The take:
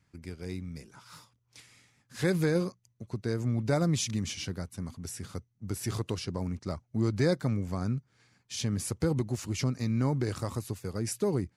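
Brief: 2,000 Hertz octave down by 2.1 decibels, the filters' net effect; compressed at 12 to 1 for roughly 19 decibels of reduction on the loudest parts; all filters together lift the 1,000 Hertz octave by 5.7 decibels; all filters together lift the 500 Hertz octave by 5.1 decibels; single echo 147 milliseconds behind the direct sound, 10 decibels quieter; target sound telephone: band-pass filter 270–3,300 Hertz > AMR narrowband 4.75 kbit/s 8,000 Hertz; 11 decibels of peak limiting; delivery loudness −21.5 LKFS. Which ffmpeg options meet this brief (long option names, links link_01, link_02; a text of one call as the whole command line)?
ffmpeg -i in.wav -af "equalizer=frequency=500:width_type=o:gain=5.5,equalizer=frequency=1000:width_type=o:gain=7,equalizer=frequency=2000:width_type=o:gain=-5.5,acompressor=threshold=-38dB:ratio=12,alimiter=level_in=10.5dB:limit=-24dB:level=0:latency=1,volume=-10.5dB,highpass=270,lowpass=3300,aecho=1:1:147:0.316,volume=29.5dB" -ar 8000 -c:a libopencore_amrnb -b:a 4750 out.amr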